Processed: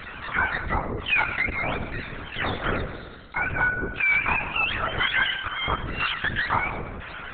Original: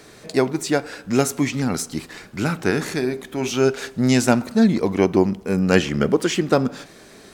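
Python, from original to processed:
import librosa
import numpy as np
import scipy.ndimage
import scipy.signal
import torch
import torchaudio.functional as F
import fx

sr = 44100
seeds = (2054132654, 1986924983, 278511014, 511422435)

y = fx.octave_mirror(x, sr, pivot_hz=770.0)
y = fx.low_shelf(y, sr, hz=120.0, db=-9.0)
y = fx.transient(y, sr, attack_db=11, sustain_db=-9, at=(1.07, 1.52), fade=0.02)
y = fx.cheby2_bandstop(y, sr, low_hz=130.0, high_hz=2500.0, order=4, stop_db=40, at=(2.85, 3.36))
y = fx.auto_swell(y, sr, attack_ms=277.0, at=(5.3, 6.25))
y = 10.0 ** (-14.0 / 20.0) * np.tanh(y / 10.0 ** (-14.0 / 20.0))
y = fx.filter_lfo_bandpass(y, sr, shape='saw_down', hz=1.0, low_hz=480.0, high_hz=2700.0, q=0.91)
y = fx.rev_plate(y, sr, seeds[0], rt60_s=0.89, hf_ratio=0.95, predelay_ms=85, drr_db=19.0)
y = fx.lpc_vocoder(y, sr, seeds[1], excitation='whisper', order=10)
y = fx.env_flatten(y, sr, amount_pct=50)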